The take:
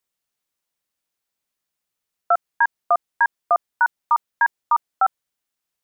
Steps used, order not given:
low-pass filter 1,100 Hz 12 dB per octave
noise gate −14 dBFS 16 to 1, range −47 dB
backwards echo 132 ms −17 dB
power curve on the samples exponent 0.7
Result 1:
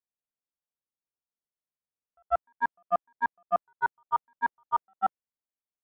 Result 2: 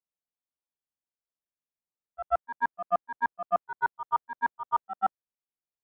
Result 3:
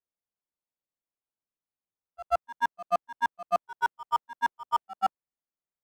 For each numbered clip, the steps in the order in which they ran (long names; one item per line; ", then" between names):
backwards echo, then noise gate, then power curve on the samples, then low-pass filter
noise gate, then backwards echo, then power curve on the samples, then low-pass filter
noise gate, then low-pass filter, then power curve on the samples, then backwards echo